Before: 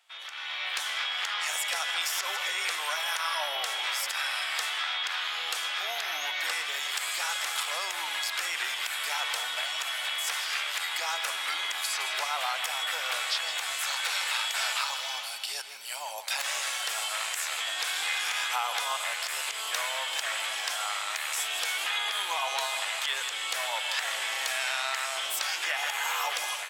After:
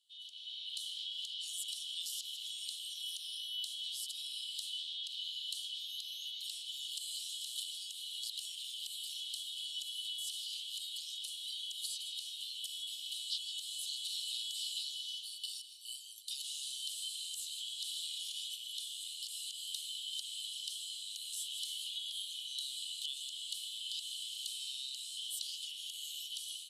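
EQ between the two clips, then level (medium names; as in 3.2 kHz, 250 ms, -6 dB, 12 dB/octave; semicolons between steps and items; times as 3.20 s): rippled Chebyshev high-pass 2.9 kHz, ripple 9 dB; brick-wall FIR low-pass 14 kHz; treble shelf 4 kHz -9.5 dB; +2.5 dB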